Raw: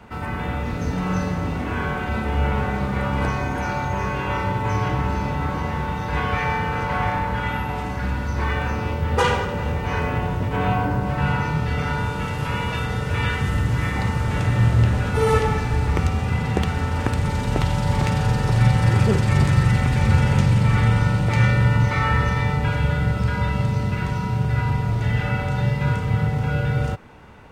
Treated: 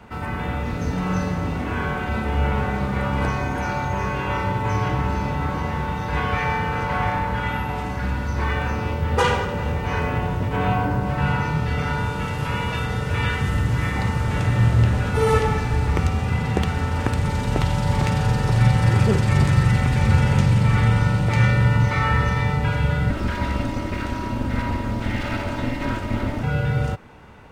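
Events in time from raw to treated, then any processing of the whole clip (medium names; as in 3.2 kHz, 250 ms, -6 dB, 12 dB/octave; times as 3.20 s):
23.10–26.43 s: comb filter that takes the minimum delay 3.2 ms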